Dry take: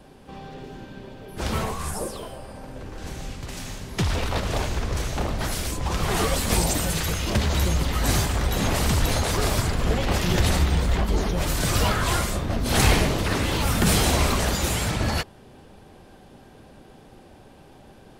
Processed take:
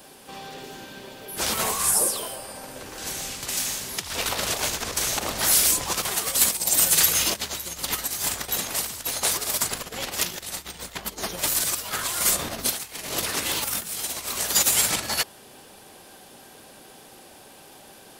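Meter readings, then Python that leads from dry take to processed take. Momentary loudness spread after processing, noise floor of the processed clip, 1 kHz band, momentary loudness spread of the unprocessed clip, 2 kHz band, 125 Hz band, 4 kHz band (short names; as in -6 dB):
17 LU, -48 dBFS, -4.0 dB, 17 LU, -2.0 dB, -18.0 dB, +2.0 dB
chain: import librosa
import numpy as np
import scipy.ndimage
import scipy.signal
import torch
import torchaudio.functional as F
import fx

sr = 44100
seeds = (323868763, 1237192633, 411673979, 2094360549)

y = fx.over_compress(x, sr, threshold_db=-26.0, ratio=-0.5)
y = fx.riaa(y, sr, side='recording')
y = F.gain(torch.from_numpy(y), -1.0).numpy()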